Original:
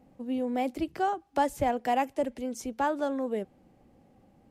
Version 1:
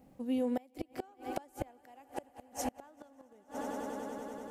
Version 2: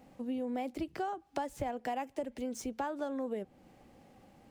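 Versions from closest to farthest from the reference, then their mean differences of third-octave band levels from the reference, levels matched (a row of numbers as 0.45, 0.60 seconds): 2, 1; 4.0, 12.5 decibels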